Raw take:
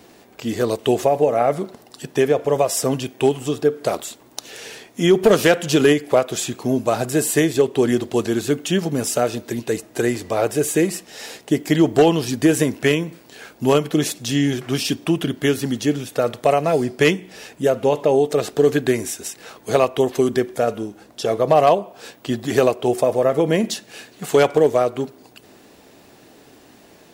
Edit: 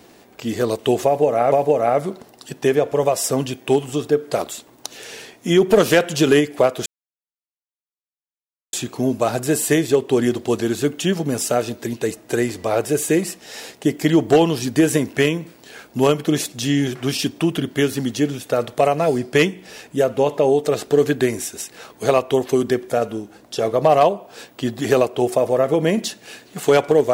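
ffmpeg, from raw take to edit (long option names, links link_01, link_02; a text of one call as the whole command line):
ffmpeg -i in.wav -filter_complex "[0:a]asplit=3[link_01][link_02][link_03];[link_01]atrim=end=1.522[link_04];[link_02]atrim=start=1.048:end=6.39,asetpts=PTS-STARTPTS,afade=type=out:start_time=5.338:duration=0.004:curve=hsin,apad=pad_dur=1.87[link_05];[link_03]atrim=start=6.39,asetpts=PTS-STARTPTS,afade=type=in:duration=0.004:curve=hsin[link_06];[link_05][link_06]concat=n=2:v=0:a=1[link_07];[link_04][link_07]acrossfade=duration=0.004:curve1=hsin:curve2=hsin" out.wav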